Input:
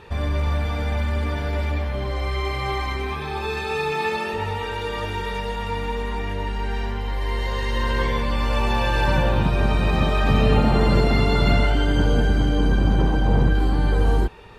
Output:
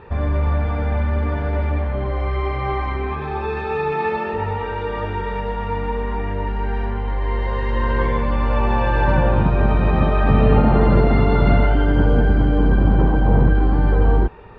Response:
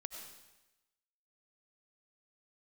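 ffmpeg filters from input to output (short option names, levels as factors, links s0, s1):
-af "lowpass=1700,volume=1.5"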